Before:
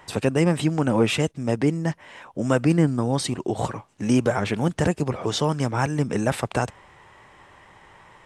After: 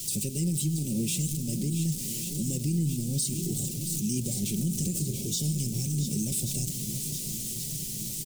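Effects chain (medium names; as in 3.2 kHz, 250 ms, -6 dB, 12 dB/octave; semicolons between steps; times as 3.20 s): jump at every zero crossing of -27.5 dBFS; Chebyshev band-stop 210–7700 Hz, order 2; resonant high shelf 1.6 kHz +12 dB, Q 1.5; comb 5.4 ms, depth 42%; shuffle delay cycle 1127 ms, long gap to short 1.5:1, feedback 57%, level -12 dB; reverberation RT60 1.4 s, pre-delay 3 ms, DRR 13.5 dB; peak limiter -14 dBFS, peak gain reduction 8.5 dB; trim -5.5 dB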